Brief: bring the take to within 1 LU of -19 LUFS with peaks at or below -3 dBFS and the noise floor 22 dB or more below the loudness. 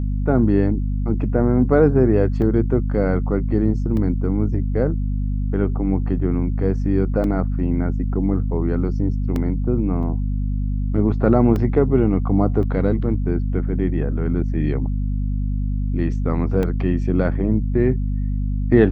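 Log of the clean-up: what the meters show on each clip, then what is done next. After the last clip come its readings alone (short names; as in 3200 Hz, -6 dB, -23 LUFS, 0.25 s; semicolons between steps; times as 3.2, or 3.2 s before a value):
dropouts 8; longest dropout 1.7 ms; hum 50 Hz; harmonics up to 250 Hz; hum level -19 dBFS; loudness -20.5 LUFS; peak -2.0 dBFS; loudness target -19.0 LUFS
-> interpolate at 2.42/3.97/7.24/9.36/10.03/11.56/12.63/16.63, 1.7 ms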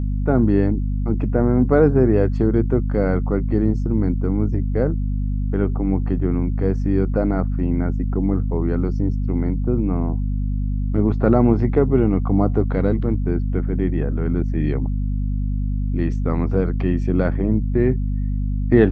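dropouts 0; hum 50 Hz; harmonics up to 250 Hz; hum level -19 dBFS
-> de-hum 50 Hz, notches 5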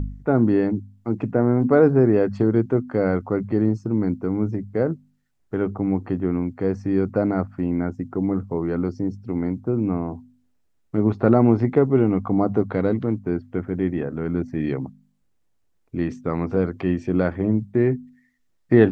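hum none; loudness -22.5 LUFS; peak -3.0 dBFS; loudness target -19.0 LUFS
-> gain +3.5 dB; limiter -3 dBFS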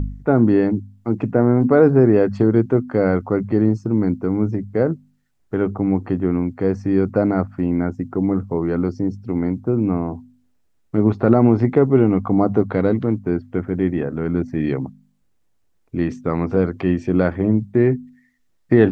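loudness -19.0 LUFS; peak -3.0 dBFS; noise floor -62 dBFS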